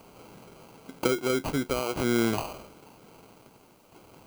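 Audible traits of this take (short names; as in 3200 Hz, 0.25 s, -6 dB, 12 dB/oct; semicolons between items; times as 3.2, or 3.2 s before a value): aliases and images of a low sample rate 1800 Hz, jitter 0%; tremolo saw down 0.51 Hz, depth 55%; a quantiser's noise floor 12-bit, dither triangular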